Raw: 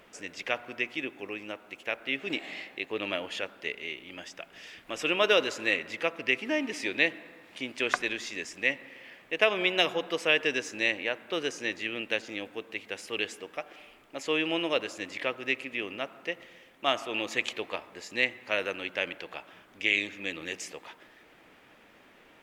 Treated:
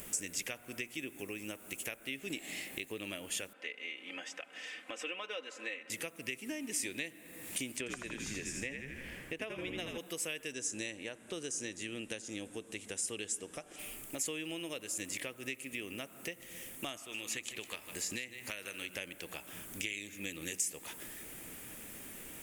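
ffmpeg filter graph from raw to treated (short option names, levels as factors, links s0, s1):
-filter_complex "[0:a]asettb=1/sr,asplit=3[s0][s1][s2];[s0]atrim=end=3.534[s3];[s1]atrim=start=3.53:end=5.9,asetpts=PTS-STARTPTS,afade=t=in:d=0.004:c=qsin,afade=t=out:st=2.366:d=0.004:c=qsin,highpass=520,lowpass=2500,aecho=1:1:3.9:0.69,atrim=end_sample=104517[s4];[s2]atrim=start=5.896[s5];[s3][s4]acrossfade=d=0.004:c1=hsin:c2=qsin[s6];[s6][s5]acrossfade=d=0.004:c1=qsin:c2=hsin,asettb=1/sr,asplit=3[s7][s8][s9];[s7]atrim=end=7.784[s10];[s8]atrim=start=7.78:end=9.98,asetpts=PTS-STARTPTS,afade=t=in:d=0.004:c=qsin,afade=t=out:st=2.196:d=0.004:c=qsin,aemphasis=mode=reproduction:type=75kf,asplit=7[s11][s12][s13][s14][s15][s16][s17];[s12]adelay=81,afreqshift=-66,volume=0.562[s18];[s13]adelay=162,afreqshift=-132,volume=0.282[s19];[s14]adelay=243,afreqshift=-198,volume=0.141[s20];[s15]adelay=324,afreqshift=-264,volume=0.07[s21];[s16]adelay=405,afreqshift=-330,volume=0.0351[s22];[s17]adelay=486,afreqshift=-396,volume=0.0176[s23];[s11][s18][s19][s20][s21][s22][s23]amix=inputs=7:normalize=0,atrim=end_sample=97020[s24];[s9]atrim=start=9.976[s25];[s10][s24]acrossfade=d=0.004:c1=hsin:c2=qsin[s26];[s26][s25]acrossfade=d=0.004:c1=qsin:c2=hsin,asettb=1/sr,asplit=3[s27][s28][s29];[s27]atrim=end=10.524[s30];[s28]atrim=start=10.52:end=13.79,asetpts=PTS-STARTPTS,afade=t=in:d=0.004:c=qsin,afade=t=out:st=3.266:d=0.004:c=qsin,lowpass=f=9100:w=0.5412,lowpass=f=9100:w=1.3066,equalizer=f=2300:t=o:w=0.91:g=-5.5,bandreject=f=4500:w=21[s31];[s29]atrim=start=13.786[s32];[s30][s31]acrossfade=d=0.004:c1=hsin:c2=qsin[s33];[s33][s32]acrossfade=d=0.004:c1=qsin:c2=hsin,asettb=1/sr,asplit=3[s34][s35][s36];[s34]atrim=end=16.964[s37];[s35]atrim=start=16.96:end=18.96,asetpts=PTS-STARTPTS,afade=t=in:d=0.004:c=qsin,afade=t=out:st=1.996:d=0.004:c=qsin,acrossover=split=1100|5200[s38][s39][s40];[s38]acompressor=threshold=0.00631:ratio=4[s41];[s39]acompressor=threshold=0.0224:ratio=4[s42];[s40]acompressor=threshold=0.00112:ratio=4[s43];[s41][s42][s43]amix=inputs=3:normalize=0,aecho=1:1:153:0.237,atrim=end_sample=88200[s44];[s36]atrim=start=18.956[s45];[s37][s44]acrossfade=d=0.004:c1=hsin:c2=qsin[s46];[s46][s45]acrossfade=d=0.004:c1=qsin:c2=hsin,highshelf=f=6400:t=q:w=1.5:g=13.5,acompressor=threshold=0.00562:ratio=5,equalizer=f=900:w=0.39:g=-14,volume=4.73"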